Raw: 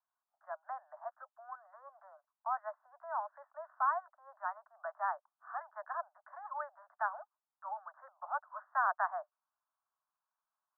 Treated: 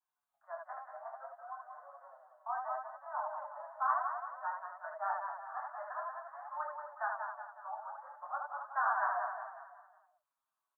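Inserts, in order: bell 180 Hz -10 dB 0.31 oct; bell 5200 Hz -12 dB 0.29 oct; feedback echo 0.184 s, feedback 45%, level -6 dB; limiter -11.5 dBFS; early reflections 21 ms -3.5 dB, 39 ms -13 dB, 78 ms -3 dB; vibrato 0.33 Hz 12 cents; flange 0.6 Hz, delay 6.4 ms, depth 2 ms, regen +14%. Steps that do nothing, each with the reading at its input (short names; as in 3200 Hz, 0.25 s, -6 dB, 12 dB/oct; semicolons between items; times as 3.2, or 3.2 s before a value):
bell 180 Hz: input band starts at 510 Hz; bell 5200 Hz: input band ends at 1900 Hz; limiter -11.5 dBFS: input peak -18.5 dBFS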